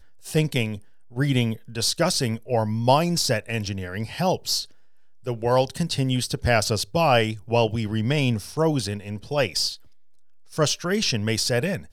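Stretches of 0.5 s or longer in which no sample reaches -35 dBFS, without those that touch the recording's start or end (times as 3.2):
4.64–5.26
9.75–10.53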